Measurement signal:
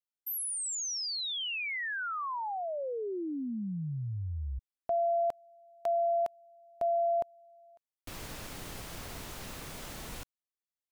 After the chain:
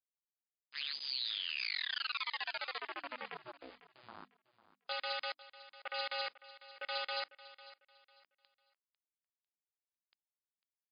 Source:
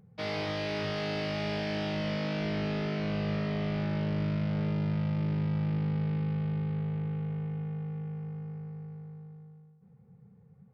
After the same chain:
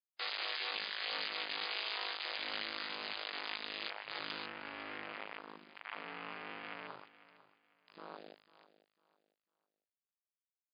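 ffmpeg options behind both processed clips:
-filter_complex "[0:a]flanger=delay=15.5:depth=4.5:speed=0.54,aresample=16000,acrusher=bits=3:dc=4:mix=0:aa=0.000001,aresample=44100,lowpass=f=2.8k:p=1,aderivative,aeval=exprs='val(0)*sin(2*PI*130*n/s)':c=same,afwtdn=0.001,bandreject=f=50:t=h:w=6,bandreject=f=100:t=h:w=6,bandreject=f=150:t=h:w=6,bandreject=f=200:t=h:w=6,bandreject=f=250:t=h:w=6,bandreject=f=300:t=h:w=6,acrusher=bits=5:mode=log:mix=0:aa=0.000001,highpass=160,asplit=2[a][b];[b]aecho=0:1:499|998|1497:0.141|0.0396|0.0111[c];[a][c]amix=inputs=2:normalize=0,volume=17.5dB" -ar 11025 -c:a libmp3lame -b:a 48k

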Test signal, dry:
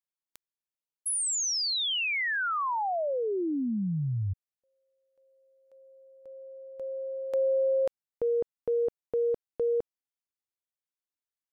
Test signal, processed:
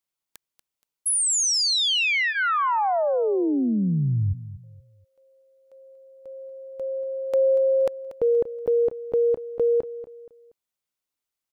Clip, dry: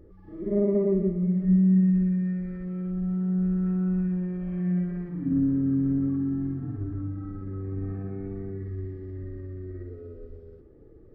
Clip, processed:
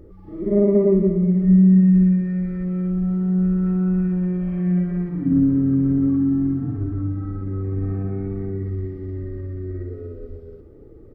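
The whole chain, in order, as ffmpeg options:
-af "bandreject=f=1.7k:w=11,aecho=1:1:237|474|711:0.188|0.064|0.0218,volume=7dB"

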